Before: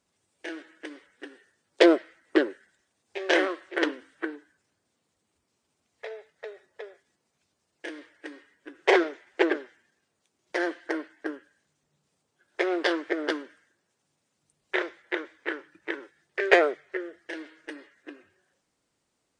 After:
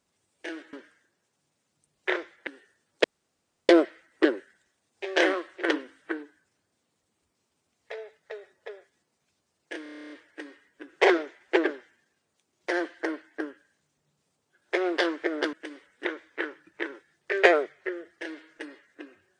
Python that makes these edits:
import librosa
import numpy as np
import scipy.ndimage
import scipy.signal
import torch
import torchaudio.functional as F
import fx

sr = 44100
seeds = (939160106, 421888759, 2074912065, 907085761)

y = fx.edit(x, sr, fx.swap(start_s=0.73, length_s=0.52, other_s=13.39, other_length_s=1.74),
    fx.insert_room_tone(at_s=1.82, length_s=0.65),
    fx.stutter(start_s=7.96, slice_s=0.03, count=10), tone=tone)